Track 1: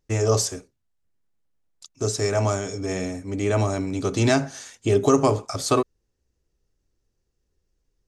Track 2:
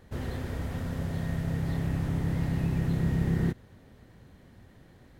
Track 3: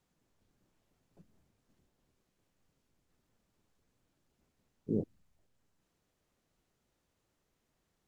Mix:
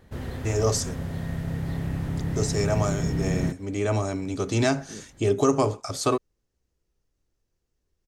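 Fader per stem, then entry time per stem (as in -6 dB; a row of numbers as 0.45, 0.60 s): -3.0, +0.5, -10.0 dB; 0.35, 0.00, 0.00 s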